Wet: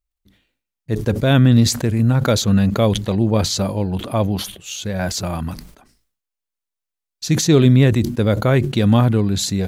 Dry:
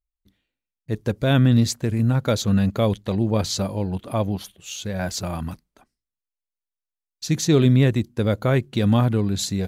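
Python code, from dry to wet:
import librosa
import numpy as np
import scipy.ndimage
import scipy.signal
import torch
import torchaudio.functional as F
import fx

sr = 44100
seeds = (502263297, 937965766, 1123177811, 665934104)

y = fx.sustainer(x, sr, db_per_s=91.0)
y = y * librosa.db_to_amplitude(4.0)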